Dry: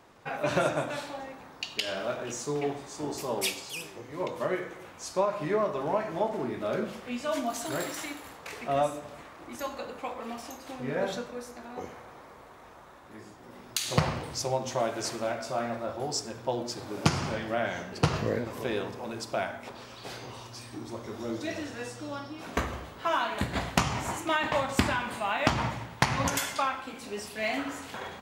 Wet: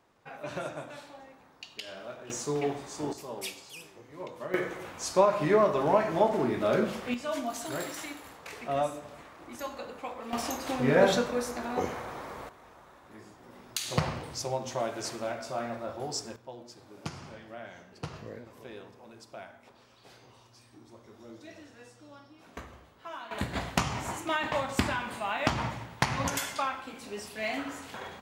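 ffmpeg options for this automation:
-af "asetnsamples=n=441:p=0,asendcmd='2.3 volume volume 0.5dB;3.13 volume volume -8dB;4.54 volume volume 4.5dB;7.14 volume volume -2.5dB;10.33 volume volume 8.5dB;12.49 volume volume -3dB;16.36 volume volume -14dB;23.31 volume volume -2.5dB',volume=-10dB"

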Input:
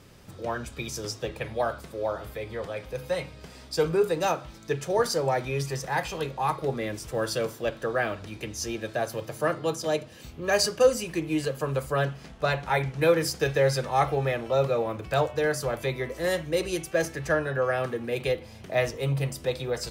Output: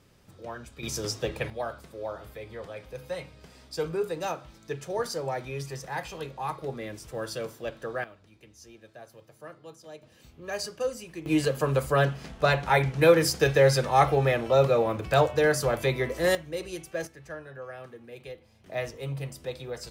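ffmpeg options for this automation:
-af "asetnsamples=n=441:p=0,asendcmd='0.83 volume volume 2dB;1.5 volume volume -6dB;8.04 volume volume -18.5dB;10.03 volume volume -10dB;11.26 volume volume 3dB;16.35 volume volume -7.5dB;17.07 volume volume -15dB;18.66 volume volume -7dB',volume=-8dB"

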